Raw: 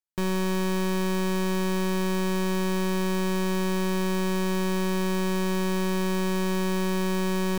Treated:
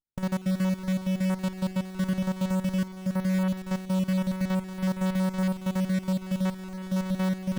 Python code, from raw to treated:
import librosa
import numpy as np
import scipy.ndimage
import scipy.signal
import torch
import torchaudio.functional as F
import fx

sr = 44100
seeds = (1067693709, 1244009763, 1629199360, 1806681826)

y = fx.spec_dropout(x, sr, seeds[0], share_pct=51)
y = fx.running_max(y, sr, window=65)